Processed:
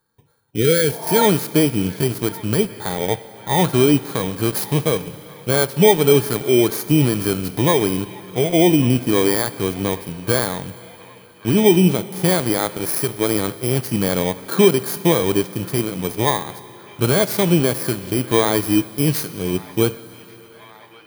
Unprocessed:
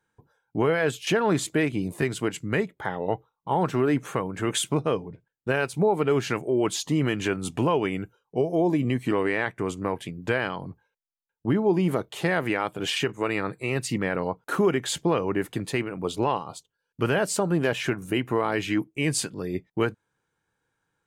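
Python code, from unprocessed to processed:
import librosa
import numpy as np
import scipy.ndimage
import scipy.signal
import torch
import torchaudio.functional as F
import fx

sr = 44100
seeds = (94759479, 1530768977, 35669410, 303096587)

p1 = fx.bit_reversed(x, sr, seeds[0], block=16)
p2 = fx.rev_schroeder(p1, sr, rt60_s=3.6, comb_ms=33, drr_db=14.5)
p3 = fx.hpss(p2, sr, part='percussive', gain_db=-8)
p4 = np.where(np.abs(p3) >= 10.0 ** (-31.0 / 20.0), p3, 0.0)
p5 = p3 + F.gain(torch.from_numpy(p4), -8.5).numpy()
p6 = fx.spec_repair(p5, sr, seeds[1], start_s=0.58, length_s=0.62, low_hz=520.0, high_hz=1300.0, source='both')
p7 = p6 + fx.echo_wet_bandpass(p6, sr, ms=1138, feedback_pct=65, hz=1600.0, wet_db=-18, dry=0)
y = F.gain(torch.from_numpy(p7), 7.0).numpy()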